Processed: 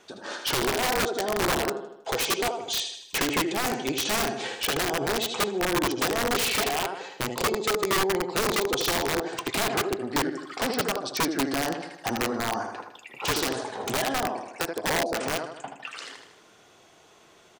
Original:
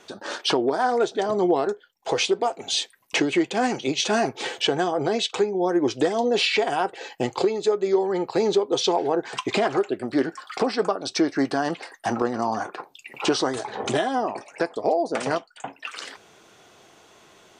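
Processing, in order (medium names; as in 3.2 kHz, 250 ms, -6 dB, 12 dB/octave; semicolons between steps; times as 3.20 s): feedback delay 78 ms, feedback 51%, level -6.5 dB; short-mantissa float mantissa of 8-bit; integer overflow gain 15 dB; trim -4 dB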